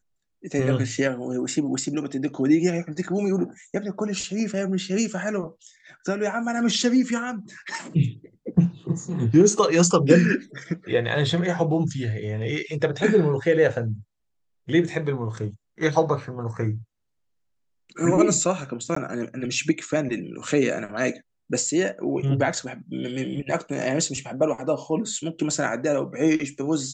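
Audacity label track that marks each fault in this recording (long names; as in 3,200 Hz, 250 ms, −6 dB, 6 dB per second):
18.950000	18.960000	drop-out 14 ms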